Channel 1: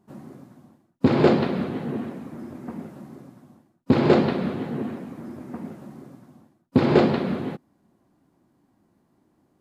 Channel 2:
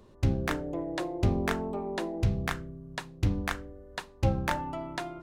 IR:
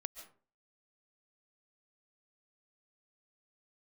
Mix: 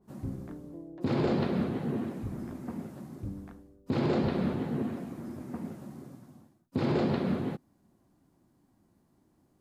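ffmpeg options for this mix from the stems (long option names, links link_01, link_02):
-filter_complex "[0:a]bass=frequency=250:gain=-1,treble=frequency=4000:gain=6,adynamicequalizer=threshold=0.00891:dfrequency=2200:dqfactor=0.7:tfrequency=2200:tqfactor=0.7:attack=5:release=100:ratio=0.375:range=2:mode=cutabove:tftype=highshelf,volume=-5dB[link_01];[1:a]bandpass=frequency=250:width_type=q:width=1.2:csg=0,volume=-9.5dB[link_02];[link_01][link_02]amix=inputs=2:normalize=0,lowshelf=frequency=120:gain=11,alimiter=limit=-19dB:level=0:latency=1:release=97"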